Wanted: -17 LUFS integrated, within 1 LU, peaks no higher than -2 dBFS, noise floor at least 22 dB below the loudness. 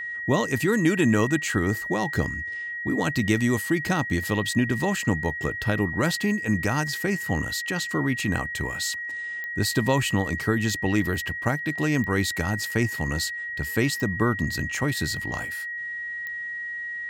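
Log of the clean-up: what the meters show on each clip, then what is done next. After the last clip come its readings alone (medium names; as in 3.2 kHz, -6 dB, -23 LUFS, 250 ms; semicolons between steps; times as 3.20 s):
clicks found 4; steady tone 1.9 kHz; tone level -30 dBFS; loudness -25.5 LUFS; peak level -7.5 dBFS; loudness target -17.0 LUFS
-> de-click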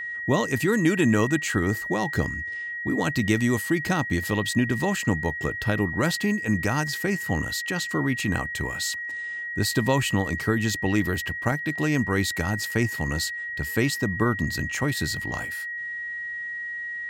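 clicks found 0; steady tone 1.9 kHz; tone level -30 dBFS
-> band-stop 1.9 kHz, Q 30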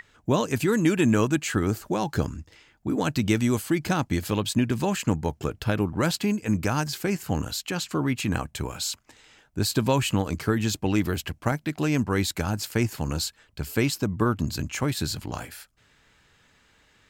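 steady tone not found; loudness -26.0 LUFS; peak level -8.0 dBFS; loudness target -17.0 LUFS
-> trim +9 dB; peak limiter -2 dBFS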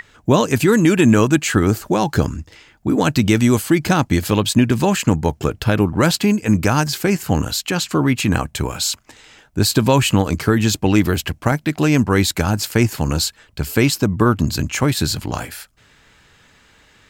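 loudness -17.5 LUFS; peak level -2.0 dBFS; noise floor -53 dBFS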